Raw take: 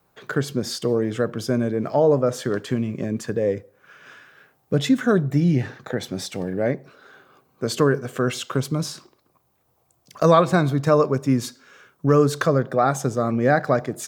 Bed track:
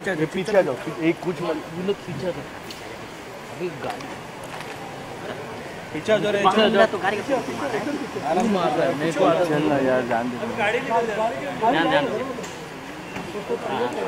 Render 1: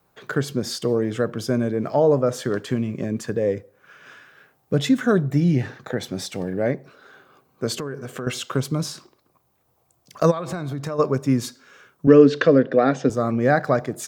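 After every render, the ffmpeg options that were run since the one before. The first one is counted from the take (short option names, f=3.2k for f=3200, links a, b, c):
-filter_complex "[0:a]asettb=1/sr,asplit=3[a][b][c];[a]atrim=end=7.764[d];[b]atrim=start=7.76:end=8.27,asetpts=PTS-STARTPTS,afade=t=in:d=0.004:c=qsin,afade=t=out:st=0.506:d=0.004:c=qsin,acompressor=threshold=-27dB:ratio=5:attack=3.2:release=140:knee=1:detection=peak[e];[c]atrim=start=8.266[f];[d][e]acrossfade=d=0.004:c1=hsin:c2=qsin[g];[g][f]acrossfade=d=0.004:c1=qsin:c2=hsin,asplit=3[h][i][j];[h]afade=t=out:st=10.3:d=0.02[k];[i]acompressor=threshold=-24dB:ratio=8:attack=3.2:release=140:knee=1:detection=peak,afade=t=in:st=10.3:d=0.02,afade=t=out:st=10.98:d=0.02[l];[j]afade=t=in:st=10.98:d=0.02[m];[k][l][m]amix=inputs=3:normalize=0,asettb=1/sr,asplit=3[n][o][p];[n]atrim=end=12.074[q];[o]atrim=start=12.07:end=13.1,asetpts=PTS-STARTPTS,afade=t=in:d=0.004:c=qsin,afade=t=out:st=1.026:d=0.004:c=qsin,highpass=150,equalizer=f=270:t=q:w=4:g=10,equalizer=f=480:t=q:w=4:g=8,equalizer=f=850:t=q:w=4:g=-7,equalizer=f=1.2k:t=q:w=4:g=-6,equalizer=f=1.8k:t=q:w=4:g=6,equalizer=f=2.8k:t=q:w=4:g=9,lowpass=f=5k:w=0.5412,lowpass=f=5k:w=1.3066[r];[p]atrim=start=13.096[s];[q][r]acrossfade=d=0.004:c1=hsin:c2=qsin[t];[t][s]acrossfade=d=0.004:c1=qsin:c2=hsin"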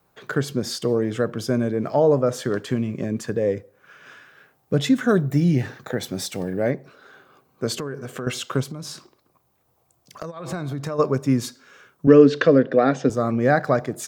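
-filter_complex "[0:a]asettb=1/sr,asplit=3[a][b][c];[a]atrim=end=5.094[d];[b]atrim=start=5.09:end=6.7,asetpts=PTS-STARTPTS,afade=t=in:d=0.004:c=qsin,afade=t=out:st=1.606:d=0.004:c=qsin,highshelf=f=10k:g=10.5[e];[c]atrim=start=6.696[f];[d][e]acrossfade=d=0.004:c1=hsin:c2=qsin[g];[g][f]acrossfade=d=0.004:c1=qsin:c2=hsin,asplit=3[h][i][j];[h]afade=t=out:st=8.63:d=0.02[k];[i]acompressor=threshold=-29dB:ratio=10:attack=3.2:release=140:knee=1:detection=peak,afade=t=in:st=8.63:d=0.02,afade=t=out:st=10.44:d=0.02[l];[j]afade=t=in:st=10.44:d=0.02[m];[k][l][m]amix=inputs=3:normalize=0"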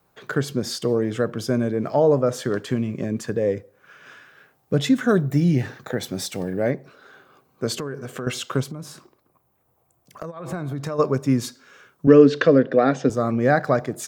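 -filter_complex "[0:a]asettb=1/sr,asplit=3[a][b][c];[a]atrim=end=8.714[d];[b]atrim=start=8.71:end=10.76,asetpts=PTS-STARTPTS,afade=t=in:d=0.004:c=qsin,afade=t=out:st=2.046:d=0.004:c=qsin,equalizer=f=4.7k:t=o:w=1.4:g=-8.5[e];[c]atrim=start=10.756[f];[d][e]acrossfade=d=0.004:c1=hsin:c2=qsin[g];[g][f]acrossfade=d=0.004:c1=qsin:c2=hsin"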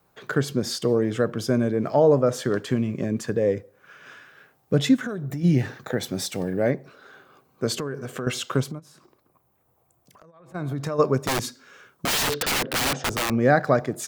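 -filter_complex "[0:a]asplit=3[a][b][c];[a]afade=t=out:st=4.95:d=0.02[d];[b]acompressor=threshold=-26dB:ratio=12:attack=3.2:release=140:knee=1:detection=peak,afade=t=in:st=4.95:d=0.02,afade=t=out:st=5.43:d=0.02[e];[c]afade=t=in:st=5.43:d=0.02[f];[d][e][f]amix=inputs=3:normalize=0,asplit=3[g][h][i];[g]afade=t=out:st=8.78:d=0.02[j];[h]acompressor=threshold=-50dB:ratio=5:attack=3.2:release=140:knee=1:detection=peak,afade=t=in:st=8.78:d=0.02,afade=t=out:st=10.54:d=0.02[k];[i]afade=t=in:st=10.54:d=0.02[l];[j][k][l]amix=inputs=3:normalize=0,asettb=1/sr,asplit=3[m][n][o];[m]atrim=end=11.274[p];[n]atrim=start=11.27:end=13.3,asetpts=PTS-STARTPTS,afade=t=in:d=0.004:c=qsin,afade=t=out:st=2.026:d=0.004:c=qsin,aeval=exprs='(mod(8.41*val(0)+1,2)-1)/8.41':c=same[q];[o]atrim=start=13.296[r];[p][q]acrossfade=d=0.004:c1=hsin:c2=qsin[s];[s][r]acrossfade=d=0.004:c1=qsin:c2=hsin"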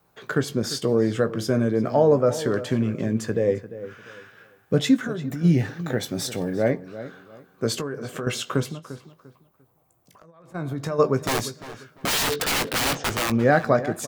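-filter_complex "[0:a]asplit=2[a][b];[b]adelay=18,volume=-10.5dB[c];[a][c]amix=inputs=2:normalize=0,asplit=2[d][e];[e]adelay=347,lowpass=f=2.8k:p=1,volume=-14dB,asplit=2[f][g];[g]adelay=347,lowpass=f=2.8k:p=1,volume=0.27,asplit=2[h][i];[i]adelay=347,lowpass=f=2.8k:p=1,volume=0.27[j];[d][f][h][j]amix=inputs=4:normalize=0"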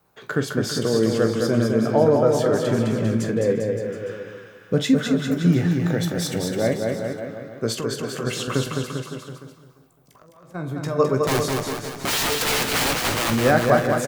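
-filter_complex "[0:a]asplit=2[a][b];[b]adelay=45,volume=-12.5dB[c];[a][c]amix=inputs=2:normalize=0,asplit=2[d][e];[e]aecho=0:1:210|399|569.1|722.2|860:0.631|0.398|0.251|0.158|0.1[f];[d][f]amix=inputs=2:normalize=0"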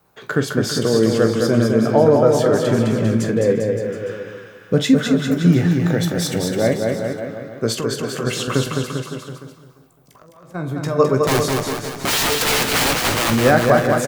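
-af "volume=4dB,alimiter=limit=-2dB:level=0:latency=1"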